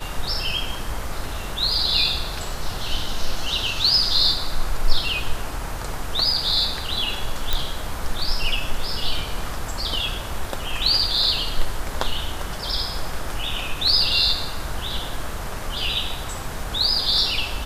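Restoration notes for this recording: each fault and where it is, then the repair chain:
7.53 s: pop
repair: de-click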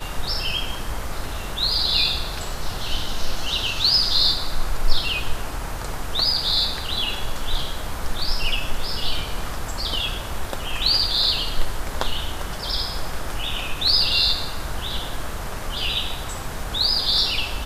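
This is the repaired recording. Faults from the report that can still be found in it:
nothing left

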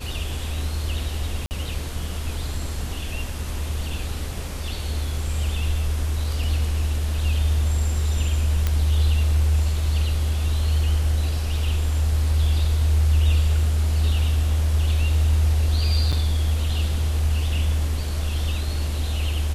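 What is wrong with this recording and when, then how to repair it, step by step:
1.46–1.51 s: dropout 49 ms
8.67 s: pop -9 dBFS
16.12–16.13 s: dropout 6.9 ms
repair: de-click; interpolate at 1.46 s, 49 ms; interpolate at 16.12 s, 6.9 ms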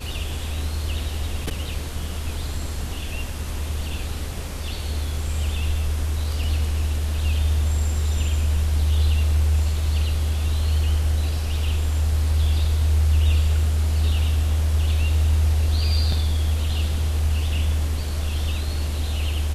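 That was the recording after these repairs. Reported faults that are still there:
nothing left

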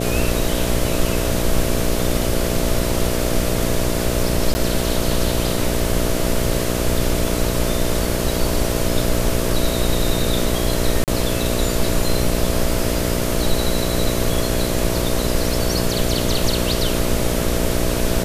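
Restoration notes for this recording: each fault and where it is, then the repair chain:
buzz 60 Hz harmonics 11 -23 dBFS
4.54–4.55 s: dropout 10 ms
11.04–11.08 s: dropout 38 ms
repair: de-hum 60 Hz, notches 11; interpolate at 4.54 s, 10 ms; interpolate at 11.04 s, 38 ms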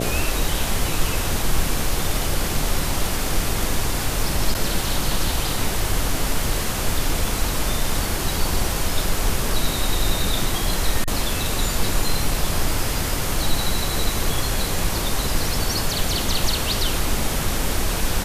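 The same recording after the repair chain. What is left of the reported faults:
nothing left

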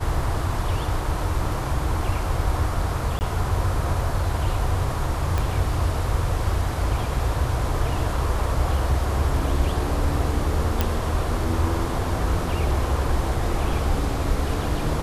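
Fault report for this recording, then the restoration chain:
3.19–3.21 s: dropout 19 ms
5.38 s: pop
10.81 s: pop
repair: de-click; interpolate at 3.19 s, 19 ms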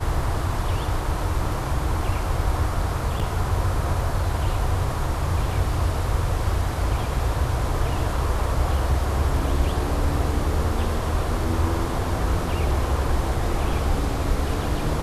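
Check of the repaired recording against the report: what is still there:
5.38 s: pop

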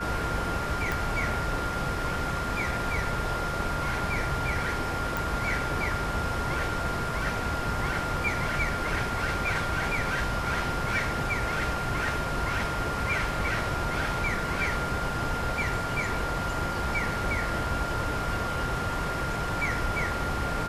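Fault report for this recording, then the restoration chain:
whine 1.4 kHz -33 dBFS
0.92 s: pop
5.17 s: pop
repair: de-click; band-stop 1.4 kHz, Q 30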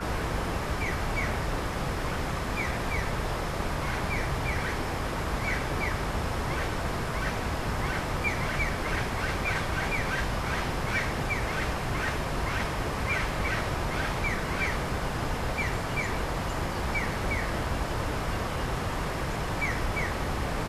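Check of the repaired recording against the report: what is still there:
nothing left

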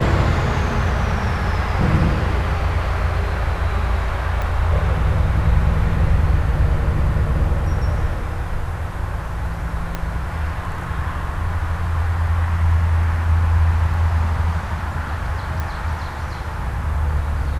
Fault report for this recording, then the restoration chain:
4.42 s: pop -13 dBFS
9.95 s: pop -10 dBFS
15.60 s: pop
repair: de-click

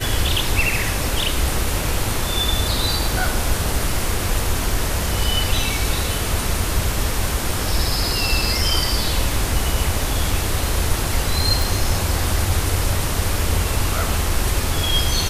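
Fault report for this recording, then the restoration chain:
11.62 s: pop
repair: de-click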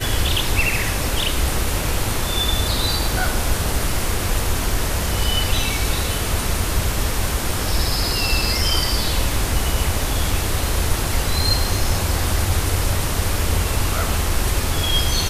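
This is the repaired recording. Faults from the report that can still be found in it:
nothing left

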